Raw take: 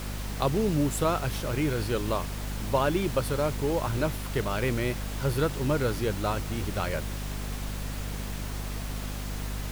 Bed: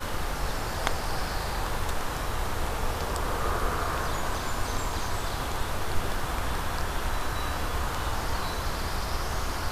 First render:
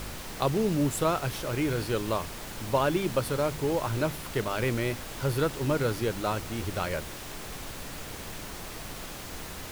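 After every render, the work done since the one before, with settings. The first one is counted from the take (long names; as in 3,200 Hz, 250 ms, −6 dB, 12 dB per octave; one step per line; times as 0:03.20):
hum removal 50 Hz, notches 5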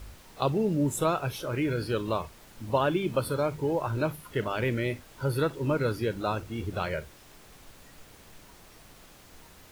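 noise reduction from a noise print 13 dB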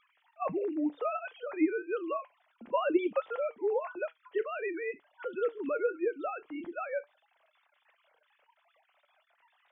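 three sine waves on the formant tracks
flanger 1.5 Hz, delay 5.7 ms, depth 1.4 ms, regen +74%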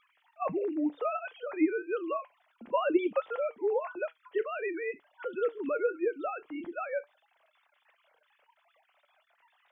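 level +1 dB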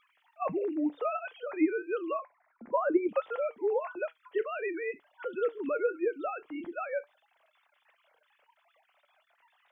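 0:02.19–0:03.09: Butterworth low-pass 2,200 Hz 72 dB per octave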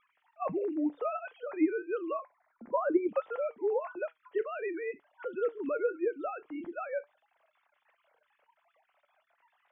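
high-frequency loss of the air 400 metres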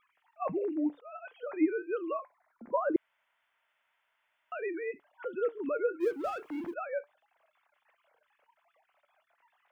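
0:00.92–0:01.37: volume swells 380 ms
0:02.96–0:04.52: fill with room tone
0:06.00–0:06.74: mu-law and A-law mismatch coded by mu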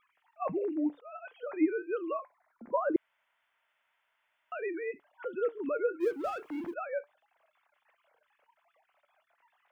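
no processing that can be heard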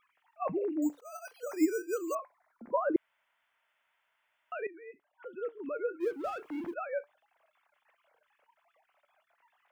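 0:00.82–0:02.15: bad sample-rate conversion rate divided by 6×, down none, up hold
0:04.67–0:06.68: fade in, from −15.5 dB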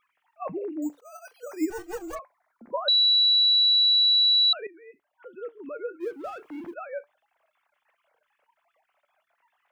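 0:01.70–0:02.19: lower of the sound and its delayed copy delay 6.1 ms
0:02.88–0:04.53: beep over 3,930 Hz −16.5 dBFS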